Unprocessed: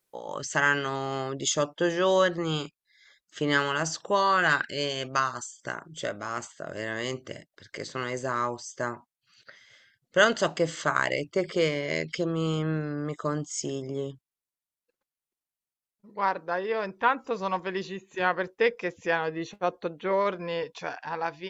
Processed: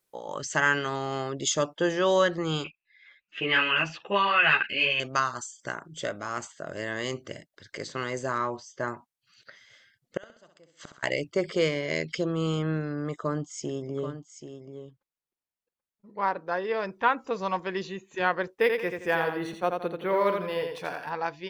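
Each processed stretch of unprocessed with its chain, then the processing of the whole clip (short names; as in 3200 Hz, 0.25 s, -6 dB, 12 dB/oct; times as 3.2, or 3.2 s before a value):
2.64–5 synth low-pass 2600 Hz, resonance Q 14 + ensemble effect
8.38–8.88 air absorption 120 m + doubler 22 ms -11 dB
10.17–11.03 flipped gate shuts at -26 dBFS, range -32 dB + flutter echo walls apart 11.1 m, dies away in 0.5 s
13.16–16.47 high shelf 3100 Hz -8 dB + echo 0.783 s -10 dB
18.58–21.11 feedback echo 85 ms, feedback 33%, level -5 dB + decimation joined by straight lines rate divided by 3×
whole clip: dry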